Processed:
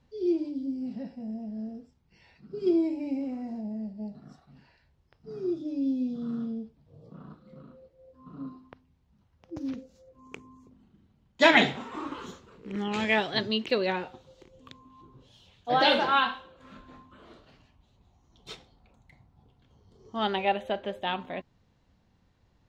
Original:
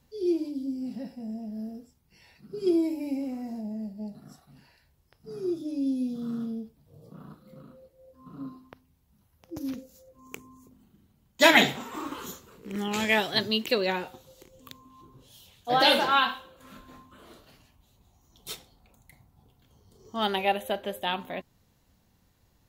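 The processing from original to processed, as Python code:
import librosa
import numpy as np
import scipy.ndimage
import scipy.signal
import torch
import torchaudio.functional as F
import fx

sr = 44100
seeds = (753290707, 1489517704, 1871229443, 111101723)

y = fx.air_absorb(x, sr, metres=140.0)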